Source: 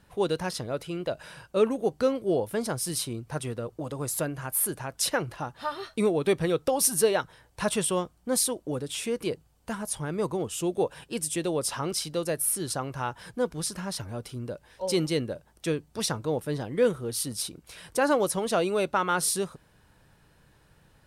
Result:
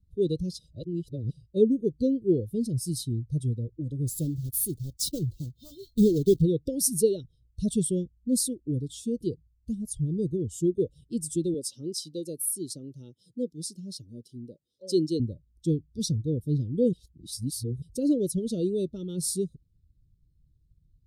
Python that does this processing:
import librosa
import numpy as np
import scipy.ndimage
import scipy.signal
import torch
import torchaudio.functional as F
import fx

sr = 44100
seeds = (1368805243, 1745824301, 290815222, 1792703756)

y = fx.block_float(x, sr, bits=3, at=(4.07, 6.43))
y = fx.highpass(y, sr, hz=230.0, slope=12, at=(11.54, 15.2))
y = fx.edit(y, sr, fx.reverse_span(start_s=0.59, length_s=0.72),
    fx.reverse_span(start_s=16.93, length_s=0.89), tone=tone)
y = fx.bin_expand(y, sr, power=1.5)
y = scipy.signal.sosfilt(scipy.signal.cheby2(4, 40, [720.0, 2400.0], 'bandstop', fs=sr, output='sos'), y)
y = fx.low_shelf(y, sr, hz=360.0, db=12.0)